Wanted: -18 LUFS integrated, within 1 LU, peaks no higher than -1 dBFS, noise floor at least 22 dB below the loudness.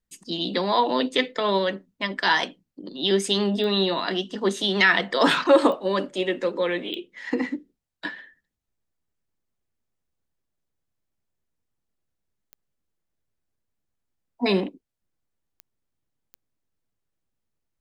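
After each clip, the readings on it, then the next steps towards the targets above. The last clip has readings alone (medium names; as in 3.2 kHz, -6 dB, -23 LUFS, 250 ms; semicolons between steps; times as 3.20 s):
clicks found 6; loudness -23.5 LUFS; peak level -5.5 dBFS; loudness target -18.0 LUFS
-> de-click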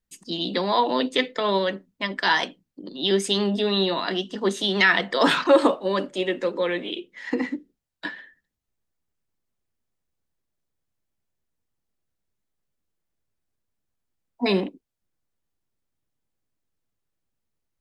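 clicks found 0; loudness -23.5 LUFS; peak level -5.5 dBFS; loudness target -18.0 LUFS
-> trim +5.5 dB; peak limiter -1 dBFS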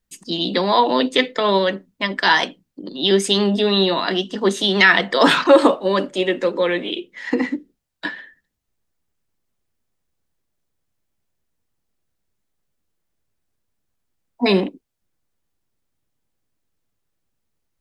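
loudness -18.0 LUFS; peak level -1.0 dBFS; noise floor -76 dBFS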